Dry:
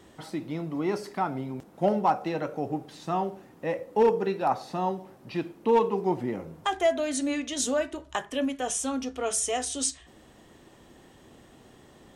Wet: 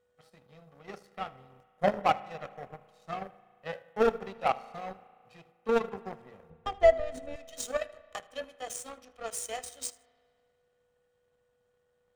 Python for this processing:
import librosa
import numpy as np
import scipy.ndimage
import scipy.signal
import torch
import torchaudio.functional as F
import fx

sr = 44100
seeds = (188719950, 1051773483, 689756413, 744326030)

p1 = fx.hum_notches(x, sr, base_hz=60, count=10)
p2 = p1 + 0.98 * np.pad(p1, (int(1.6 * sr / 1000.0), 0))[:len(p1)]
p3 = p2 + 10.0 ** (-38.0 / 20.0) * np.sin(2.0 * np.pi * 490.0 * np.arange(len(p2)) / sr)
p4 = fx.level_steps(p3, sr, step_db=10)
p5 = p3 + (p4 * 10.0 ** (-2.5 / 20.0))
p6 = fx.power_curve(p5, sr, exponent=2.0)
p7 = fx.tilt_eq(p6, sr, slope=-4.0, at=(6.5, 7.36))
p8 = fx.echo_feedback(p7, sr, ms=78, feedback_pct=25, wet_db=-23)
p9 = fx.rev_spring(p8, sr, rt60_s=2.1, pass_ms=(35,), chirp_ms=75, drr_db=18.0)
y = p9 * 10.0 ** (-4.0 / 20.0)